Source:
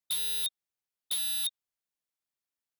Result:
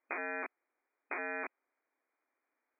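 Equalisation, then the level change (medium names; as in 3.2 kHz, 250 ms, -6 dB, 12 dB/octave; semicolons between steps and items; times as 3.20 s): brick-wall FIR high-pass 240 Hz; brick-wall FIR low-pass 2.5 kHz; distance through air 260 m; +17.0 dB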